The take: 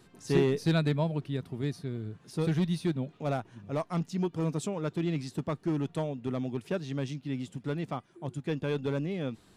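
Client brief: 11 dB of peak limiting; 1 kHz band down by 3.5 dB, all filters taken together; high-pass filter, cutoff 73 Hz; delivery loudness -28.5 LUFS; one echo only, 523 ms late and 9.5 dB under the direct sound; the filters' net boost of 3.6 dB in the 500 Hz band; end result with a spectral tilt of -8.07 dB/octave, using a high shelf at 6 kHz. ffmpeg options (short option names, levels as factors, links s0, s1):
-af "highpass=73,equalizer=f=500:t=o:g=6.5,equalizer=f=1000:t=o:g=-8,highshelf=f=6000:g=-4,alimiter=limit=0.0794:level=0:latency=1,aecho=1:1:523:0.335,volume=1.68"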